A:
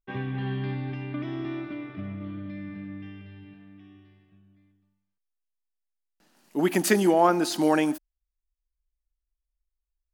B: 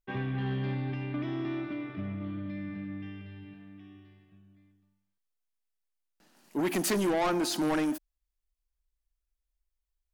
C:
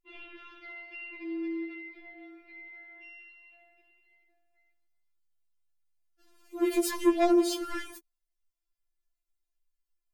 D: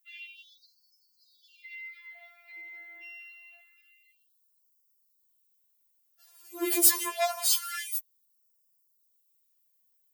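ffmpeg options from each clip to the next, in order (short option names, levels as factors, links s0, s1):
-af "asoftclip=type=tanh:threshold=0.0596"
-af "afftfilt=real='re*4*eq(mod(b,16),0)':imag='im*4*eq(mod(b,16),0)':win_size=2048:overlap=0.75"
-af "aemphasis=mode=production:type=riaa,afftfilt=real='re*gte(b*sr/1024,290*pow(4500/290,0.5+0.5*sin(2*PI*0.26*pts/sr)))':imag='im*gte(b*sr/1024,290*pow(4500/290,0.5+0.5*sin(2*PI*0.26*pts/sr)))':win_size=1024:overlap=0.75"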